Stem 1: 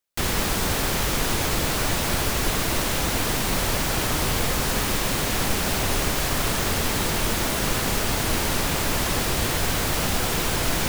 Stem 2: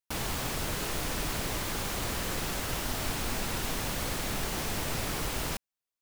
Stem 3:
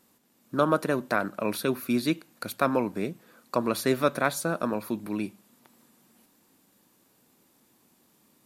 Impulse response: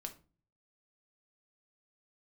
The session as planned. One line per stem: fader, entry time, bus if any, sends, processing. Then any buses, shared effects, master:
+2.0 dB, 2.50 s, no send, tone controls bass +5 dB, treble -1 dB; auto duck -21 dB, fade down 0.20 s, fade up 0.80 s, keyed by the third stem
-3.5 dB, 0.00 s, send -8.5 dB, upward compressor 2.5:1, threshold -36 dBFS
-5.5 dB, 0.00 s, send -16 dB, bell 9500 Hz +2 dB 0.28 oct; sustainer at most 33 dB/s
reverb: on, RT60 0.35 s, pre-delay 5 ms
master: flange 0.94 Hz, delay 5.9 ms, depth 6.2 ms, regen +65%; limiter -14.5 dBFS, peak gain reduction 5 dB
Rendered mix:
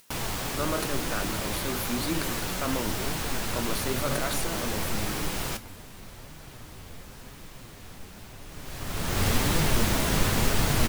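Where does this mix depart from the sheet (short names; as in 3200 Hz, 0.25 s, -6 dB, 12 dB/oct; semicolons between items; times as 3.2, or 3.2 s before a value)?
stem 2 -3.5 dB -> +4.0 dB; master: missing limiter -14.5 dBFS, peak gain reduction 5 dB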